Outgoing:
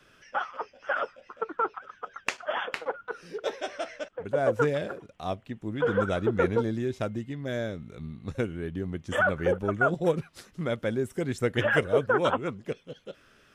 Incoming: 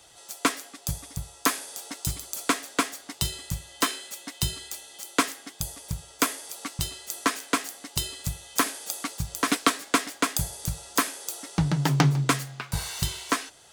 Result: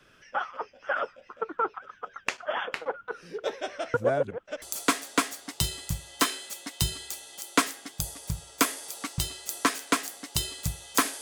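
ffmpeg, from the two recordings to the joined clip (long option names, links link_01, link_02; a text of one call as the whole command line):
ffmpeg -i cue0.wav -i cue1.wav -filter_complex "[0:a]apad=whole_dur=11.21,atrim=end=11.21,asplit=2[link_01][link_02];[link_01]atrim=end=3.942[link_03];[link_02]atrim=start=3.938:end=4.622,asetpts=PTS-STARTPTS,areverse[link_04];[1:a]atrim=start=2.228:end=8.82[link_05];[link_03][link_04]acrossfade=duration=0.004:curve1=hsin:curve2=hsin[link_06];[link_06][link_05]acrossfade=duration=0.004:curve1=hsin:curve2=hsin" out.wav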